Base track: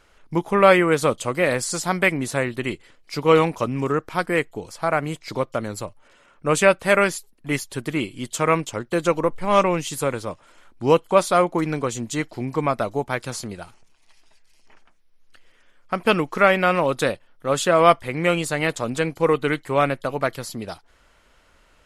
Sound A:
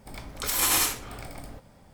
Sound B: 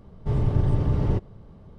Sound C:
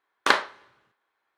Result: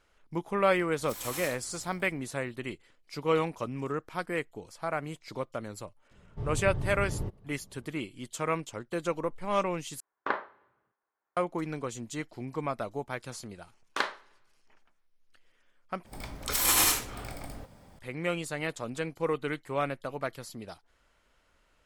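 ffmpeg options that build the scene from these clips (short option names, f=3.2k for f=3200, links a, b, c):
-filter_complex "[1:a]asplit=2[a][b];[3:a]asplit=2[c][d];[0:a]volume=-11dB[e];[c]lowpass=1.4k[f];[e]asplit=3[g][h][i];[g]atrim=end=10.004[j];[f]atrim=end=1.37,asetpts=PTS-STARTPTS,volume=-7.5dB[k];[h]atrim=start=11.366:end=16.064[l];[b]atrim=end=1.93,asetpts=PTS-STARTPTS,volume=-0.5dB[m];[i]atrim=start=17.986[n];[a]atrim=end=1.93,asetpts=PTS-STARTPTS,volume=-16dB,afade=t=in:d=0.004:c=hsin,afade=t=out:st=1.926:d=0.004:c=hsin,adelay=620[o];[2:a]atrim=end=1.78,asetpts=PTS-STARTPTS,volume=-11.5dB,afade=t=in:d=0.004:c=hsin,afade=t=out:st=1.776:d=0.004:c=hsin,adelay=6110[p];[d]atrim=end=1.37,asetpts=PTS-STARTPTS,volume=-10dB,afade=t=in:d=0.004:c=hsin,afade=t=out:st=1.366:d=0.004:c=hsin,adelay=13700[q];[j][k]acrossfade=d=0.004:c1=hsin:c2=hsin[r];[r][l]acrossfade=d=0.004:c1=hsin:c2=hsin[s];[s][m]acrossfade=d=0.004:c1=hsin:c2=hsin[t];[t][n]acrossfade=d=0.004:c1=hsin:c2=hsin[u];[u][o][p][q]amix=inputs=4:normalize=0"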